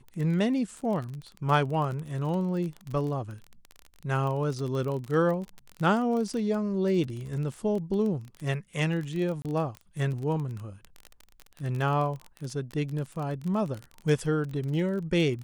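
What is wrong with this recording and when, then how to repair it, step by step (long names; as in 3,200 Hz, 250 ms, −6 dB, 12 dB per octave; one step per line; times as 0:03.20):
surface crackle 29 per second −32 dBFS
0:09.42–0:09.45: drop-out 28 ms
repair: click removal
repair the gap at 0:09.42, 28 ms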